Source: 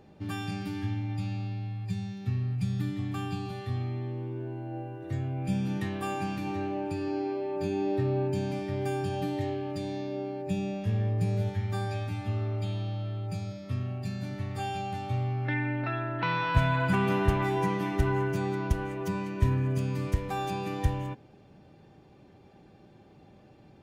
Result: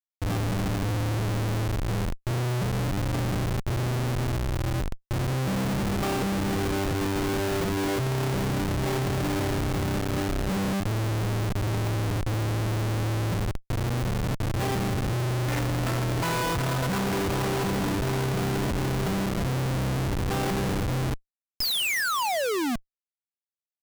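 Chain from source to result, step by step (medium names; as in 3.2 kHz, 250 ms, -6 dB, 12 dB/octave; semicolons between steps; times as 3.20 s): painted sound fall, 21.60–22.76 s, 220–5300 Hz -25 dBFS; Schmitt trigger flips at -32 dBFS; trim +4 dB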